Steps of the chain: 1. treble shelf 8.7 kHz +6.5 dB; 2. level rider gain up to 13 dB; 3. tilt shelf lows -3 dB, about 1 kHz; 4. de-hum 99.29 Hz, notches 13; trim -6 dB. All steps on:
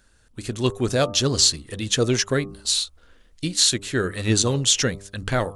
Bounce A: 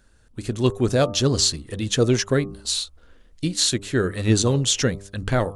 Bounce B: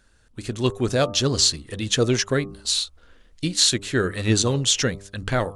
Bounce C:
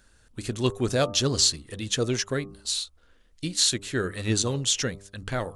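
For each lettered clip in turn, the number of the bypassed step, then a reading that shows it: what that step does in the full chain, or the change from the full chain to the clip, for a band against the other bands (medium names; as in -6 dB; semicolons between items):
3, 8 kHz band -4.0 dB; 1, 8 kHz band -2.0 dB; 2, loudness change -4.5 LU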